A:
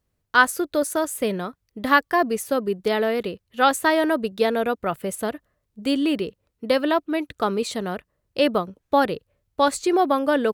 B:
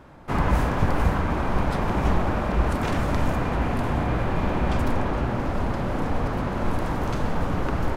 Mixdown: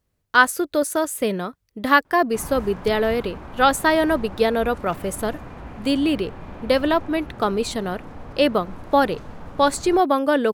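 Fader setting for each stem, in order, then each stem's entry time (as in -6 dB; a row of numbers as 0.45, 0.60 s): +1.5, -13.0 dB; 0.00, 2.05 s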